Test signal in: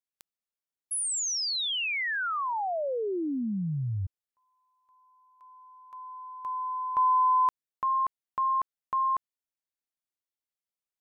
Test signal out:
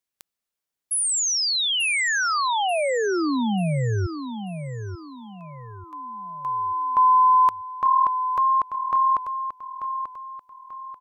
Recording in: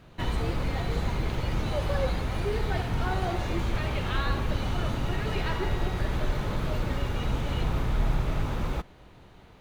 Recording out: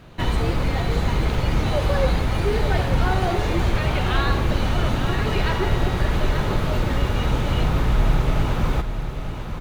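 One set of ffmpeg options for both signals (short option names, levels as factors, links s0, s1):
-af "aecho=1:1:888|1776|2664|3552:0.355|0.131|0.0486|0.018,volume=2.24"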